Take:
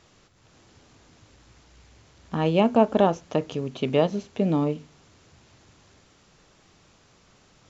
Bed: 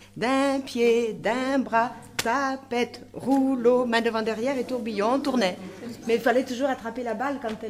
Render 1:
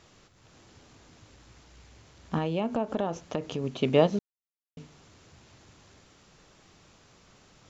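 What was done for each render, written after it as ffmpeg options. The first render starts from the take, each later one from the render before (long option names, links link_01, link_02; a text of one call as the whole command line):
ffmpeg -i in.wav -filter_complex "[0:a]asettb=1/sr,asplit=3[link_01][link_02][link_03];[link_01]atrim=end=2.384[link_04];[link_02]atrim=start=2.38:end=3.64,asetpts=PTS-STARTPTS,afade=type=in:duration=0.004:curve=qsin,afade=type=out:start_time=1.256:duration=0.004:curve=qsin,acompressor=threshold=-27dB:ratio=3:attack=3.2:release=140:knee=1:detection=peak[link_05];[link_03]atrim=start=3.636[link_06];[link_04][link_05]acrossfade=duration=0.004:curve1=hsin:curve2=qsin[link_07];[link_07][link_06]acrossfade=duration=0.004:curve1=qsin:curve2=hsin,asplit=3[link_08][link_09][link_10];[link_08]atrim=end=4.19,asetpts=PTS-STARTPTS,afade=type=out:start_time=4.186:duration=0.004:curve=hsin[link_11];[link_09]atrim=start=4.19:end=4.77,asetpts=PTS-STARTPTS,volume=0[link_12];[link_10]atrim=start=4.77,asetpts=PTS-STARTPTS,afade=type=in:duration=0.004:curve=hsin[link_13];[link_11][link_12][link_13]concat=n=3:v=0:a=1" out.wav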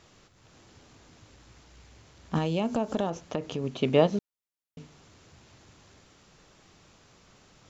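ffmpeg -i in.wav -filter_complex "[0:a]asettb=1/sr,asplit=3[link_01][link_02][link_03];[link_01]atrim=end=2.354[link_04];[link_02]atrim=start=2.35:end=3.1,asetpts=PTS-STARTPTS,afade=type=in:duration=0.004:curve=qsin,afade=type=out:start_time=0.746:duration=0.004:curve=qsin,bass=frequency=250:gain=3,treble=frequency=4000:gain=12[link_05];[link_03]atrim=start=3.096[link_06];[link_04][link_05]acrossfade=duration=0.004:curve1=hsin:curve2=qsin[link_07];[link_07][link_06]acrossfade=duration=0.004:curve1=qsin:curve2=hsin" out.wav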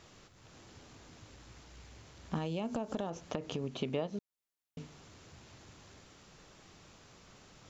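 ffmpeg -i in.wav -af "acompressor=threshold=-34dB:ratio=4" out.wav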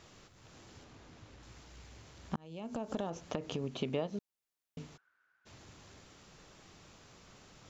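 ffmpeg -i in.wav -filter_complex "[0:a]asettb=1/sr,asplit=3[link_01][link_02][link_03];[link_01]atrim=end=0.844[link_04];[link_02]atrim=start=0.84:end=1.43,asetpts=PTS-STARTPTS,afade=type=in:duration=0.004:curve=qsin,afade=type=out:start_time=0.586:duration=0.004:curve=qsin,lowpass=frequency=3700:poles=1[link_05];[link_03]atrim=start=1.426[link_06];[link_04][link_05]acrossfade=duration=0.004:curve1=hsin:curve2=qsin[link_07];[link_07][link_06]acrossfade=duration=0.004:curve1=qsin:curve2=hsin,asplit=3[link_08][link_09][link_10];[link_08]afade=type=out:start_time=4.96:duration=0.02[link_11];[link_09]bandpass=frequency=1500:width_type=q:width=16,afade=type=in:start_time=4.96:duration=0.02,afade=type=out:start_time=5.45:duration=0.02[link_12];[link_10]afade=type=in:start_time=5.45:duration=0.02[link_13];[link_11][link_12][link_13]amix=inputs=3:normalize=0,asplit=2[link_14][link_15];[link_14]atrim=end=2.36,asetpts=PTS-STARTPTS,afade=type=out:start_time=2.356:duration=0.004:curve=hsin[link_16];[link_15]atrim=start=2.36,asetpts=PTS-STARTPTS,afade=type=in:duration=0.56[link_17];[link_16][link_17]concat=n=2:v=0:a=1" out.wav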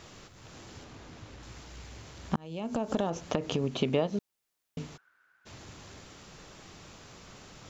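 ffmpeg -i in.wav -af "volume=7.5dB" out.wav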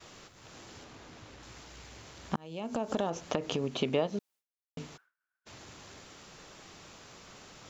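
ffmpeg -i in.wav -af "agate=range=-33dB:threshold=-53dB:ratio=3:detection=peak,lowshelf=frequency=200:gain=-7.5" out.wav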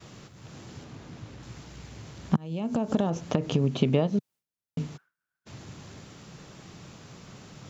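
ffmpeg -i in.wav -af "equalizer=frequency=140:width=0.68:gain=14" out.wav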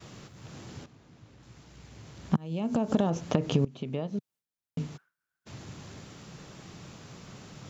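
ffmpeg -i in.wav -filter_complex "[0:a]asplit=3[link_01][link_02][link_03];[link_01]atrim=end=0.86,asetpts=PTS-STARTPTS,afade=type=out:start_time=0.856:duration=0.004:curve=hsin:silence=0.251189[link_04];[link_02]atrim=start=0.86:end=3.65,asetpts=PTS-STARTPTS,afade=type=in:duration=1.72:curve=qua:silence=0.251189,afade=type=out:start_time=2.786:duration=0.004:curve=hsin:silence=0.0944061[link_05];[link_03]atrim=start=3.65,asetpts=PTS-STARTPTS,afade=type=in:duration=1.95:curve=qsin:silence=0.0944061[link_06];[link_04][link_05][link_06]concat=n=3:v=0:a=1" out.wav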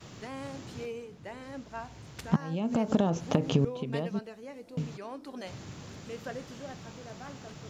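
ffmpeg -i in.wav -i bed.wav -filter_complex "[1:a]volume=-18.5dB[link_01];[0:a][link_01]amix=inputs=2:normalize=0" out.wav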